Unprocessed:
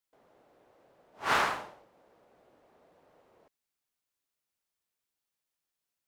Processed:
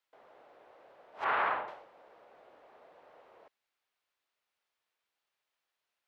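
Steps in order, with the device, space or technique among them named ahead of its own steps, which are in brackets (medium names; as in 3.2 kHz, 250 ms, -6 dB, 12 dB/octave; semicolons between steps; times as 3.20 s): 1.24–1.68 s: distance through air 480 m; DJ mixer with the lows and highs turned down (three-band isolator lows -14 dB, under 430 Hz, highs -15 dB, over 4.1 kHz; peak limiter -28.5 dBFS, peak gain reduction 10 dB); trim +7.5 dB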